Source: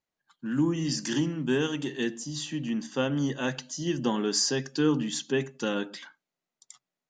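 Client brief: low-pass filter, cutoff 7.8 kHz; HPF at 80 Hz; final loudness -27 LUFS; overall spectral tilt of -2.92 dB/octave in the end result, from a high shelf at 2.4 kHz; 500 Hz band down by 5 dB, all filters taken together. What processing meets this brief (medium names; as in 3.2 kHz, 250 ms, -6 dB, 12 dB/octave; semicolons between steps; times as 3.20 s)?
high-pass 80 Hz; low-pass 7.8 kHz; peaking EQ 500 Hz -7 dB; treble shelf 2.4 kHz +7.5 dB; trim +1 dB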